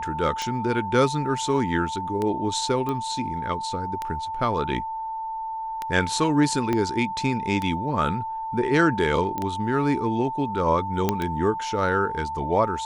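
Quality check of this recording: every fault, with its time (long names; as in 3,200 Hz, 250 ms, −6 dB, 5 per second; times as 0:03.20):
scratch tick 33 1/3 rpm −14 dBFS
whistle 890 Hz −28 dBFS
0:02.89: click −16 dBFS
0:06.73: click −12 dBFS
0:09.38: click −15 dBFS
0:11.09: click −7 dBFS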